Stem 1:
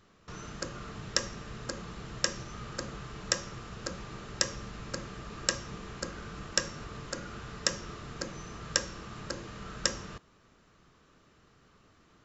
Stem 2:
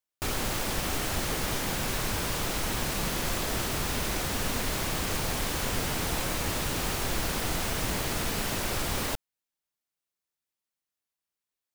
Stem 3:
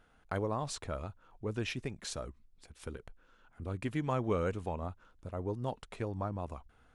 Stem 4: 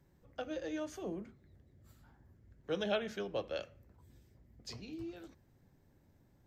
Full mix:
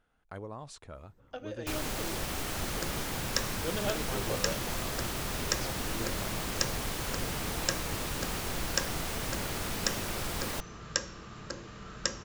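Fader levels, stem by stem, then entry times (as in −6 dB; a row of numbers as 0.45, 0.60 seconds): −2.5, −5.0, −8.0, −0.5 decibels; 2.20, 1.45, 0.00, 0.95 seconds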